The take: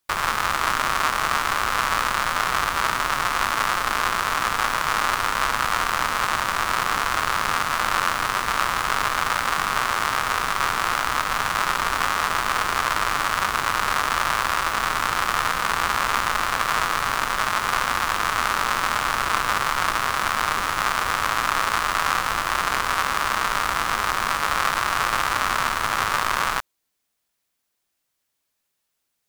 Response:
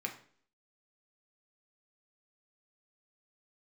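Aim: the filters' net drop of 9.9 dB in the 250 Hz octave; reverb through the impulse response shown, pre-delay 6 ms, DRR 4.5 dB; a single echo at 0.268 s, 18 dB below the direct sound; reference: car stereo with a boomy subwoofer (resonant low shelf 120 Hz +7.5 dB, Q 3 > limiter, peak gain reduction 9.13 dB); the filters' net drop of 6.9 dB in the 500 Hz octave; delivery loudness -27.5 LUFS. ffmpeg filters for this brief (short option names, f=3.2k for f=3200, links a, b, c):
-filter_complex "[0:a]equalizer=f=250:t=o:g=-8.5,equalizer=f=500:t=o:g=-7,aecho=1:1:268:0.126,asplit=2[a][b];[1:a]atrim=start_sample=2205,adelay=6[c];[b][c]afir=irnorm=-1:irlink=0,volume=-6dB[d];[a][d]amix=inputs=2:normalize=0,lowshelf=f=120:t=q:w=3:g=7.5,volume=-2dB,alimiter=limit=-14dB:level=0:latency=1"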